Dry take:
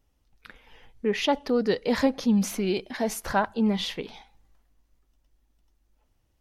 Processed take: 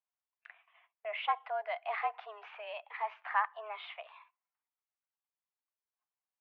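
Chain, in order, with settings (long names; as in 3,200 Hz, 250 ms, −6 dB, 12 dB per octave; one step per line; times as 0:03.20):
single-sideband voice off tune +210 Hz 530–2,600 Hz
noise gate −57 dBFS, range −14 dB
level −5.5 dB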